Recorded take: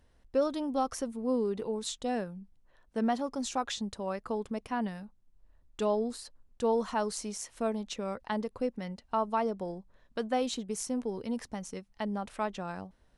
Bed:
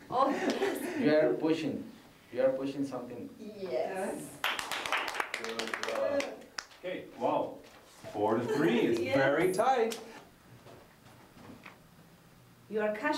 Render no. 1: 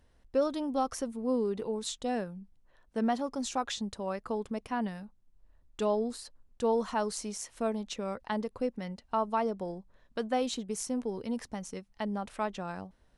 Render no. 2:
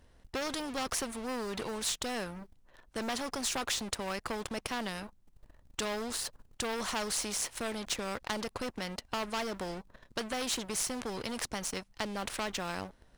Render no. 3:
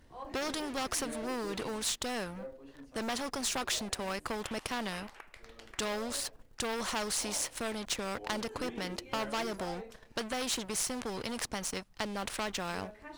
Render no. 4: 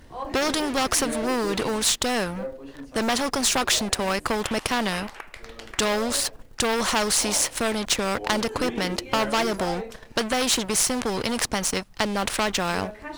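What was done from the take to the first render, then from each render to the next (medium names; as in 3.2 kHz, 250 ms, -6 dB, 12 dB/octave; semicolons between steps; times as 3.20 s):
no audible change
waveshaping leveller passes 2; spectrum-flattening compressor 2:1
add bed -17.5 dB
trim +11.5 dB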